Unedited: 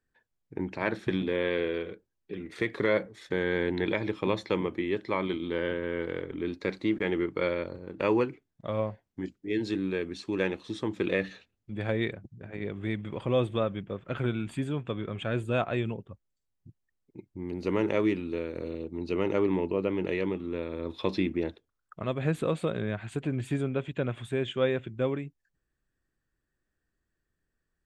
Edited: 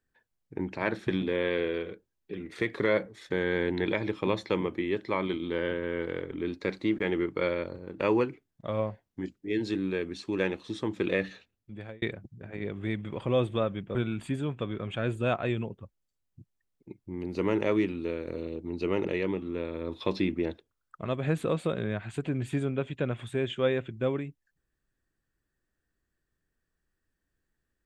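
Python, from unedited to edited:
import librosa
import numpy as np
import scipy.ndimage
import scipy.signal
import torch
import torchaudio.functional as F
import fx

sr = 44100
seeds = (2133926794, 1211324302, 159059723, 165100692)

y = fx.edit(x, sr, fx.fade_out_span(start_s=11.18, length_s=0.84, curve='qsin'),
    fx.cut(start_s=13.95, length_s=0.28),
    fx.cut(start_s=19.33, length_s=0.7), tone=tone)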